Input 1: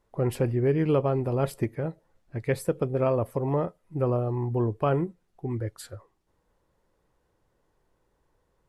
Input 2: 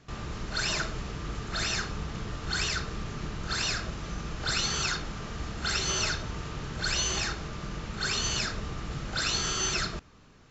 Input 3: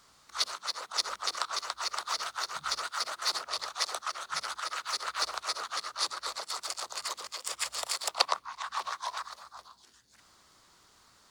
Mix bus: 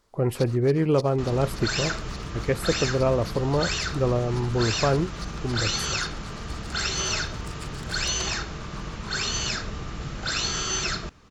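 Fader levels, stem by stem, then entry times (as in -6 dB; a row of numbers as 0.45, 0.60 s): +2.0, +2.0, -11.5 dB; 0.00, 1.10, 0.00 s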